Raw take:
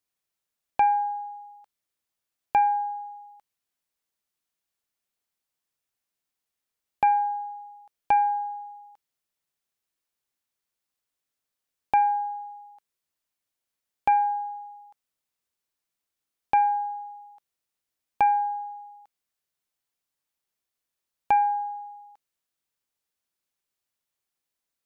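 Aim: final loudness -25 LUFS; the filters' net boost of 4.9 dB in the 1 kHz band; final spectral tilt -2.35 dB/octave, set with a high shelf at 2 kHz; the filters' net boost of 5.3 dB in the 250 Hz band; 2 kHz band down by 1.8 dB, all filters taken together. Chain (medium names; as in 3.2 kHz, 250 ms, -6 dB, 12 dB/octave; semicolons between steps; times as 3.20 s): peaking EQ 250 Hz +6.5 dB; peaking EQ 1 kHz +6.5 dB; treble shelf 2 kHz +3.5 dB; peaking EQ 2 kHz -7 dB; trim -4.5 dB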